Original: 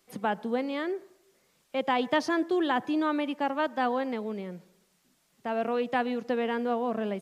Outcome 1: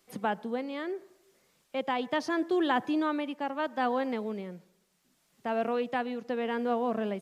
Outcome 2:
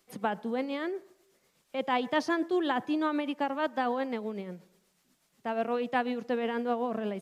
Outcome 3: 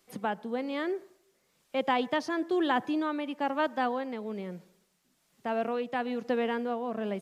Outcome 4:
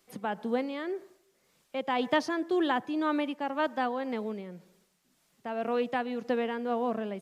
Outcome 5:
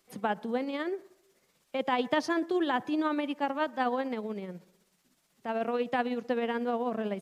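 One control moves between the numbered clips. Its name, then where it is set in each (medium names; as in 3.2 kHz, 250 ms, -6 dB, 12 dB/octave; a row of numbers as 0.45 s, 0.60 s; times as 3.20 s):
tremolo, rate: 0.73 Hz, 8.2 Hz, 1.1 Hz, 1.9 Hz, 16 Hz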